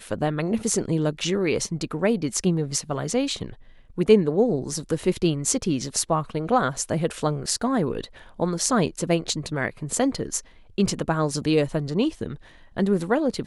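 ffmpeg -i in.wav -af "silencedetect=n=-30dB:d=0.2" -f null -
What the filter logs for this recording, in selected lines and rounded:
silence_start: 3.50
silence_end: 3.98 | silence_duration: 0.48
silence_start: 8.05
silence_end: 8.40 | silence_duration: 0.35
silence_start: 10.39
silence_end: 10.78 | silence_duration: 0.39
silence_start: 12.34
silence_end: 12.77 | silence_duration: 0.42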